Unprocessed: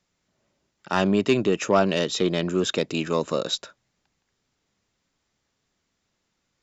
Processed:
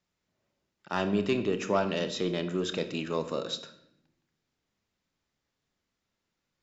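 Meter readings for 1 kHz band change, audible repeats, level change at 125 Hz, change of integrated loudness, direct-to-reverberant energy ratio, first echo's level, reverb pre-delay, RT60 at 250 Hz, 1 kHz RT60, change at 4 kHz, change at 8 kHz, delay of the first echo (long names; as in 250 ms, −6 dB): −7.0 dB, no echo audible, −7.0 dB, −7.0 dB, 8.5 dB, no echo audible, 29 ms, 1.2 s, 0.65 s, −7.5 dB, can't be measured, no echo audible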